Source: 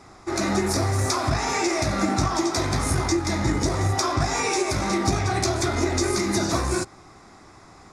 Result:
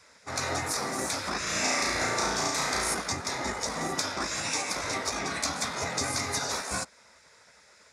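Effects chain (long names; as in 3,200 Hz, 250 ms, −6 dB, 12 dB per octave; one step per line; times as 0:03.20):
high-pass filter 86 Hz 24 dB per octave
gate on every frequency bin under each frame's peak −10 dB weak
0:01.43–0:02.94: flutter between parallel walls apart 6 metres, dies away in 0.74 s
level −2 dB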